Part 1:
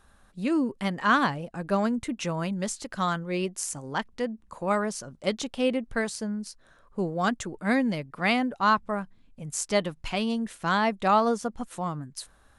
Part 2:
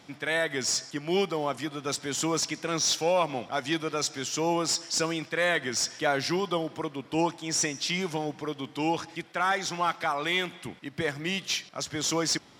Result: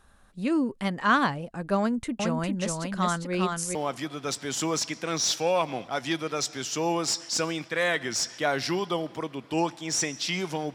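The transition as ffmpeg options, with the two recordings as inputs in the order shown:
ffmpeg -i cue0.wav -i cue1.wav -filter_complex "[0:a]asettb=1/sr,asplit=3[link_01][link_02][link_03];[link_01]atrim=end=1.794[link_04];[link_02]atrim=start=1.79:end=3.75,asetpts=PTS-STARTPTS,afade=type=in:duration=0.004:curve=qsin,afade=type=out:start_time=1.956:duration=0.004:curve=qsin,aecho=1:1:404:0.668,atrim=end_sample=86436[link_05];[link_03]atrim=start=3.746[link_06];[link_04][link_05]acrossfade=duration=0.004:curve1=hsin:curve2=qsin[link_07];[link_07][link_06]acrossfade=duration=0.004:curve1=qsin:curve2=hsin,apad=whole_dur=10.74,atrim=end=10.74,atrim=end=3.752[link_08];[1:a]atrim=start=1.358:end=8.35[link_09];[link_08][link_09]acrossfade=duration=0.004:curve1=hsin:curve2=hsin" out.wav

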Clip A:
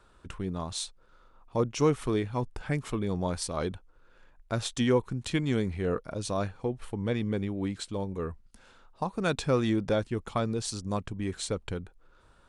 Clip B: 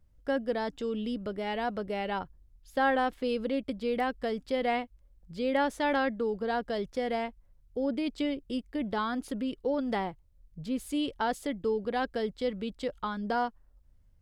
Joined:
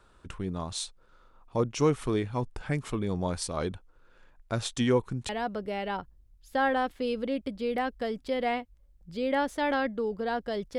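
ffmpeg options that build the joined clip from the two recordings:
ffmpeg -i cue0.wav -i cue1.wav -filter_complex "[0:a]apad=whole_dur=10.78,atrim=end=10.78,atrim=end=5.292[link_01];[1:a]atrim=start=1.508:end=7[link_02];[link_01][link_02]acrossfade=duration=0.004:curve1=hsin:curve2=hsin" out.wav

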